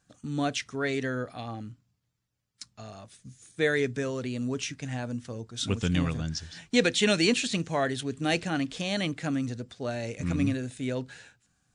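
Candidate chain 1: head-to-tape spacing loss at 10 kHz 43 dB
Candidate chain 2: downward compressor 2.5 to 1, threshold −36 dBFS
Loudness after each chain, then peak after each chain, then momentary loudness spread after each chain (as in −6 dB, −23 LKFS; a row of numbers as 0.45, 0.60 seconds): −32.5, −37.5 LKFS; −13.5, −20.5 dBFS; 14, 11 LU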